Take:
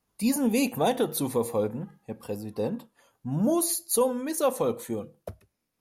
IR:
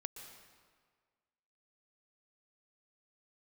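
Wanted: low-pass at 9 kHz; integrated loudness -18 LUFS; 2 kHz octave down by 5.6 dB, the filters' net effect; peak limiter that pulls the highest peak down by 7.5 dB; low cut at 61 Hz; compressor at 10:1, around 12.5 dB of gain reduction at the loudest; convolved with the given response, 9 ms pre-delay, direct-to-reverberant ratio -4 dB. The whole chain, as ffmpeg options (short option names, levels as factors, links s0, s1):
-filter_complex "[0:a]highpass=61,lowpass=9000,equalizer=f=2000:t=o:g=-8,acompressor=threshold=0.0224:ratio=10,alimiter=level_in=2.11:limit=0.0631:level=0:latency=1,volume=0.473,asplit=2[s0][s1];[1:a]atrim=start_sample=2205,adelay=9[s2];[s1][s2]afir=irnorm=-1:irlink=0,volume=2.24[s3];[s0][s3]amix=inputs=2:normalize=0,volume=7.08"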